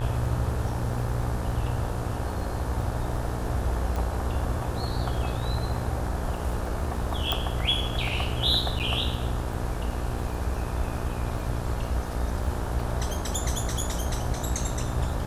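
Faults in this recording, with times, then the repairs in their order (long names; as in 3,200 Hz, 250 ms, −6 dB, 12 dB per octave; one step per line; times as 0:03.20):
mains buzz 60 Hz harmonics 30 −33 dBFS
surface crackle 21 per second −36 dBFS
0:03.96: click
0:07.32: click
0:08.79–0:08.80: drop-out 8.5 ms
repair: click removal
hum removal 60 Hz, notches 30
repair the gap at 0:08.79, 8.5 ms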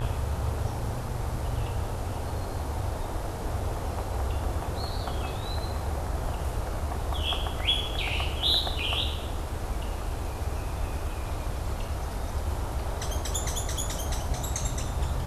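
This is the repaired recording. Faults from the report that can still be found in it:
none of them is left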